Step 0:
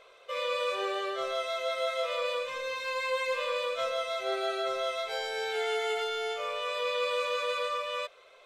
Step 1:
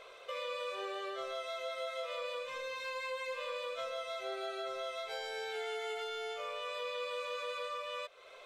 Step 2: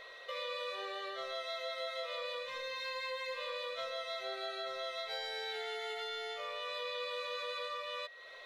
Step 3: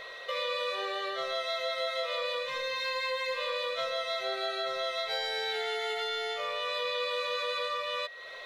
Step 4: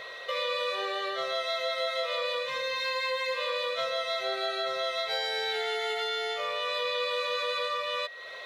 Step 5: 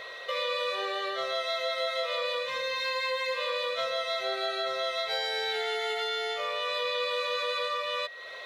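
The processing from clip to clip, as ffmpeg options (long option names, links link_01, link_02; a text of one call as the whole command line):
ffmpeg -i in.wav -af "acompressor=threshold=-46dB:ratio=2.5,volume=3dB" out.wav
ffmpeg -i in.wav -af "equalizer=frequency=400:width_type=o:width=0.33:gain=-4,equalizer=frequency=4000:width_type=o:width=0.33:gain=9,equalizer=frequency=8000:width_type=o:width=0.33:gain=-7,aeval=exprs='val(0)+0.00282*sin(2*PI*1900*n/s)':channel_layout=same,volume=-1dB" out.wav
ffmpeg -i in.wav -af "equalizer=frequency=150:width=5.9:gain=6,volume=7.5dB" out.wav
ffmpeg -i in.wav -af "highpass=44,volume=2dB" out.wav
ffmpeg -i in.wav -af "bandreject=frequency=50:width_type=h:width=6,bandreject=frequency=100:width_type=h:width=6,bandreject=frequency=150:width_type=h:width=6" out.wav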